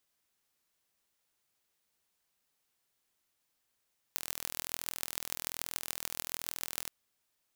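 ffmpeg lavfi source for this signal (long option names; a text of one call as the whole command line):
ffmpeg -f lavfi -i "aevalsrc='0.531*eq(mod(n,1070),0)*(0.5+0.5*eq(mod(n,6420),0))':duration=2.73:sample_rate=44100" out.wav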